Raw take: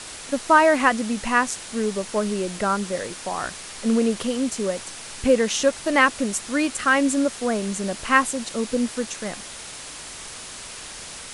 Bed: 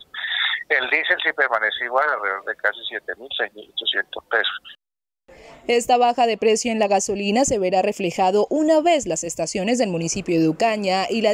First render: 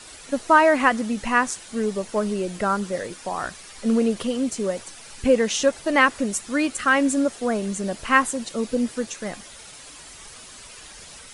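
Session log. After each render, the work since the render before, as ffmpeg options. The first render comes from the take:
-af "afftdn=nr=9:nf=-38"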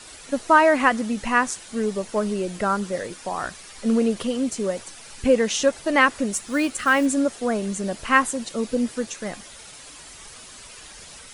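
-filter_complex "[0:a]asettb=1/sr,asplit=3[a][b][c];[a]atrim=end=6.334[d];[b]atrim=start=6.33:end=7.06,asetpts=PTS-STARTPTS,afade=t=in:d=0.004:c=qsin,afade=t=out:st=0.726:d=0.004:c=qsin,acrusher=bits=7:mode=log:mix=0:aa=0.000001[e];[c]atrim=start=7.056[f];[d][e]acrossfade=d=0.004:c1=hsin:c2=qsin[g];[g][f]acrossfade=d=0.004:c1=qsin:c2=hsin"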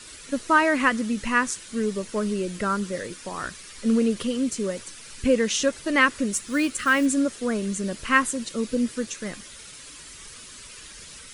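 -af "equalizer=f=750:w=2.1:g=-11.5"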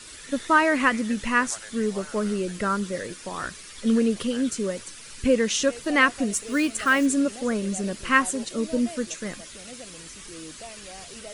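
-filter_complex "[1:a]volume=-24dB[a];[0:a][a]amix=inputs=2:normalize=0"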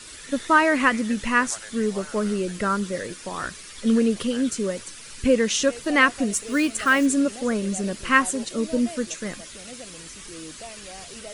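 -af "volume=1.5dB"

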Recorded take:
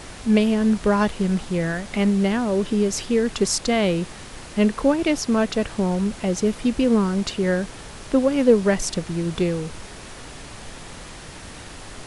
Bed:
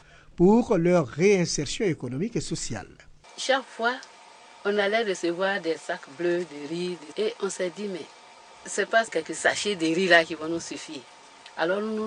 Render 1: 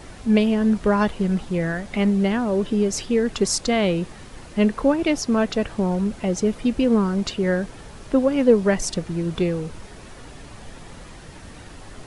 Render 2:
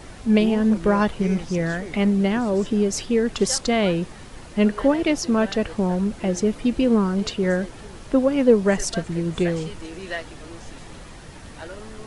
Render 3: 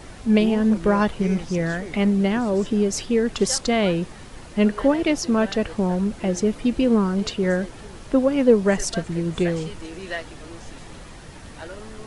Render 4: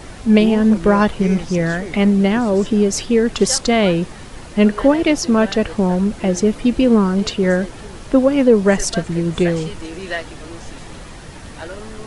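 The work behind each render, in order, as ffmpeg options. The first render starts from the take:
-af "afftdn=nr=7:nf=-39"
-filter_complex "[1:a]volume=-13dB[a];[0:a][a]amix=inputs=2:normalize=0"
-af anull
-af "volume=5.5dB,alimiter=limit=-2dB:level=0:latency=1"

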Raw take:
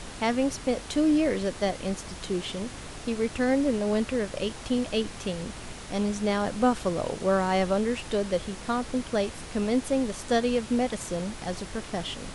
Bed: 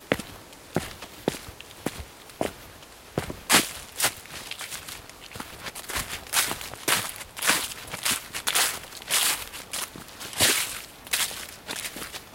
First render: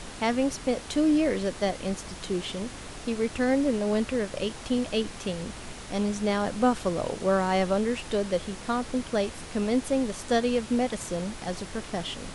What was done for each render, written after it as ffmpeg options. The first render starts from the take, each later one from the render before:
-af "bandreject=f=50:t=h:w=4,bandreject=f=100:t=h:w=4,bandreject=f=150:t=h:w=4"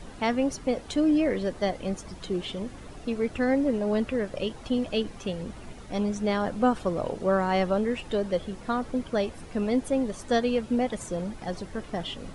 -af "afftdn=nr=11:nf=-41"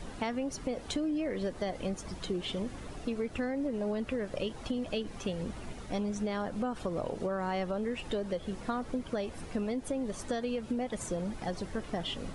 -af "alimiter=limit=-19dB:level=0:latency=1:release=132,acompressor=threshold=-30dB:ratio=6"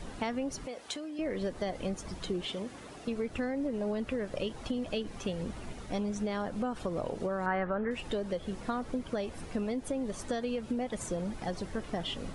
-filter_complex "[0:a]asettb=1/sr,asplit=3[a][b][c];[a]atrim=end=0.664[d];[b]atrim=start=0.66:end=1.19,asetpts=PTS-STARTPTS,afade=t=in:d=0.004:c=qsin,afade=t=out:st=0.526:d=0.004:c=qsin,highpass=f=830:p=1[e];[c]atrim=start=1.186[f];[d][e]acrossfade=d=0.004:c1=hsin:c2=qsin[g];[g][f]acrossfade=d=0.004:c1=qsin:c2=hsin,asettb=1/sr,asplit=3[h][i][j];[h]atrim=end=2.454[k];[i]atrim=start=2.45:end=3.08,asetpts=PTS-STARTPTS,afade=t=in:d=0.004:c=qsin,afade=t=out:st=0.626:d=0.004:c=qsin,highpass=f=250:p=1[l];[j]atrim=start=3.076[m];[k][l]acrossfade=d=0.004:c1=hsin:c2=qsin[n];[n][m]acrossfade=d=0.004:c1=qsin:c2=hsin,asettb=1/sr,asplit=3[o][p][q];[o]atrim=end=7.464[r];[p]atrim=start=7.46:end=7.91,asetpts=PTS-STARTPTS,afade=t=in:d=0.004:c=qsin,afade=t=out:st=0.446:d=0.004:c=qsin,lowpass=f=1.6k:t=q:w=3.3[s];[q]atrim=start=7.906[t];[r][s]acrossfade=d=0.004:c1=hsin:c2=qsin[u];[u][t]acrossfade=d=0.004:c1=qsin:c2=hsin"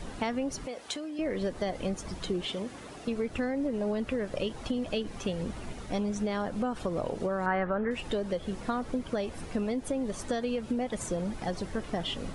-af "volume=2.5dB"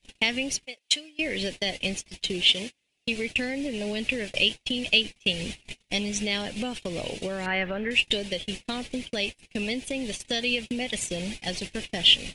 -af "agate=range=-40dB:threshold=-35dB:ratio=16:detection=peak,highshelf=f=1.8k:t=q:w=3:g=12.5"

